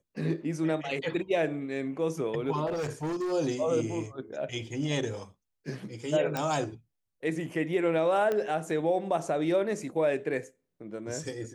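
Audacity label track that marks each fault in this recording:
2.660000	3.330000	clipping −28.5 dBFS
6.370000	6.370000	click −16 dBFS
8.320000	8.320000	click −18 dBFS

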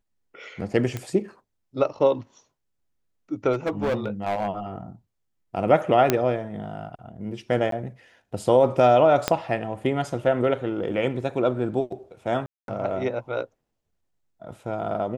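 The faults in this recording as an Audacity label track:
0.970000	0.970000	click −16 dBFS
3.530000	4.480000	clipping −20.5 dBFS
6.100000	6.100000	click −4 dBFS
7.710000	7.720000	drop-out 13 ms
9.280000	9.280000	click −5 dBFS
12.460000	12.680000	drop-out 222 ms

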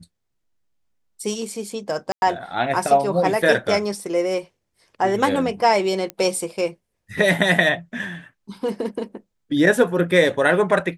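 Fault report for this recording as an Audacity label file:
2.120000	2.220000	drop-out 101 ms
6.100000	6.100000	click −13 dBFS

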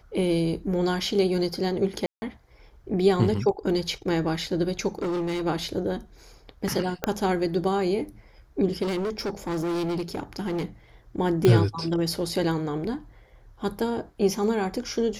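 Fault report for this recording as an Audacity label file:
2.060000	2.220000	drop-out 160 ms
4.990000	5.460000	clipping −25 dBFS
7.040000	7.040000	click −10 dBFS
8.820000	10.650000	clipping −25 dBFS
11.450000	11.450000	click −8 dBFS

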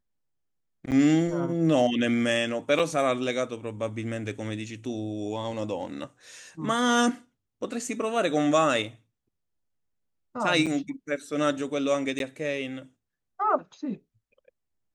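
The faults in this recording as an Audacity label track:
0.910000	0.920000	drop-out 8.4 ms
2.790000	2.800000	drop-out 5.5 ms
10.660000	10.670000	drop-out 6.6 ms
12.190000	12.200000	drop-out 12 ms

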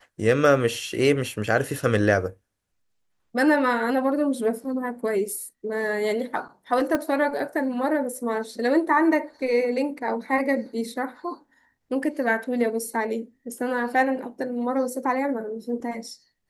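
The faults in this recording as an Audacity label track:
6.950000	6.950000	click −11 dBFS

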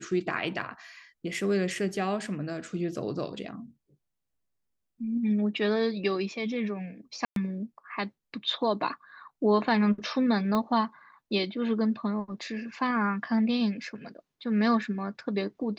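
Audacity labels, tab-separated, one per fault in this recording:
0.620000	0.620000	drop-out 2.5 ms
7.250000	7.360000	drop-out 112 ms
10.550000	10.550000	click −16 dBFS

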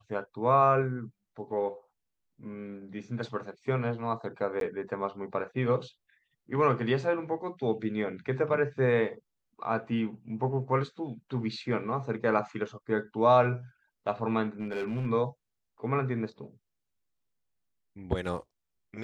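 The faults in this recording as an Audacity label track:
4.600000	4.610000	drop-out 12 ms
14.600000	15.070000	clipping −28.5 dBFS

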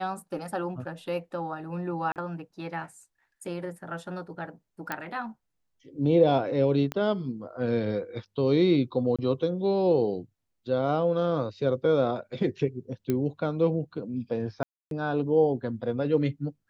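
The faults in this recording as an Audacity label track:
2.120000	2.160000	drop-out 38 ms
4.920000	4.920000	click −15 dBFS
6.920000	6.920000	click −17 dBFS
9.160000	9.190000	drop-out 26 ms
13.100000	13.100000	click −15 dBFS
14.630000	14.910000	drop-out 282 ms

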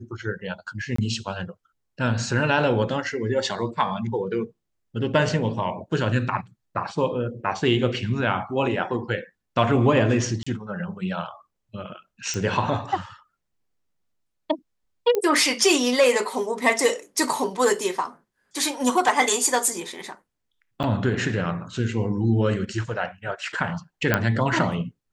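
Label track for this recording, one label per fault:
0.960000	0.980000	drop-out 24 ms
10.430000	10.460000	drop-out 35 ms
12.340000	12.340000	click −16 dBFS
15.150000	15.150000	click −11 dBFS
20.830000	20.840000	drop-out 7.9 ms
24.140000	24.140000	click −5 dBFS

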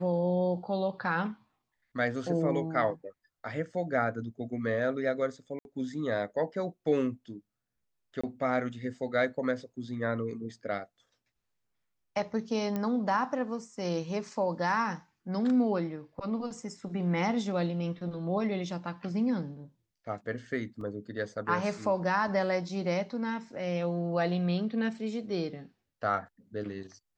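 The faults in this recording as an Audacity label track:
5.590000	5.650000	drop-out 61 ms
8.210000	8.230000	drop-out 25 ms
12.760000	12.760000	click −20 dBFS
20.810000	20.810000	drop-out 2.8 ms

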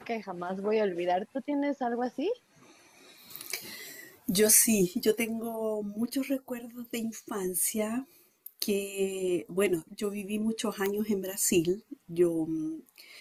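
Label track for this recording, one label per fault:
10.860000	10.860000	click −15 dBFS

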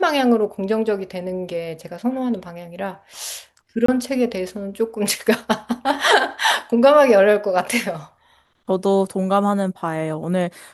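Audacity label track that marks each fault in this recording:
3.860000	3.880000	drop-out 24 ms

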